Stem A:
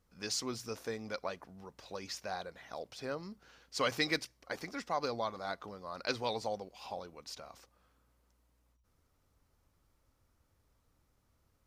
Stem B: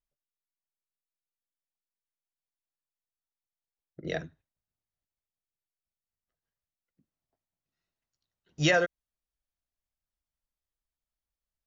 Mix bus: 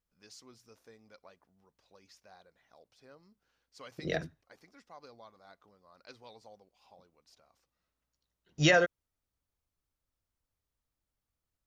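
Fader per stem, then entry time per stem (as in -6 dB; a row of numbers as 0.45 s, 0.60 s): -17.5 dB, 0.0 dB; 0.00 s, 0.00 s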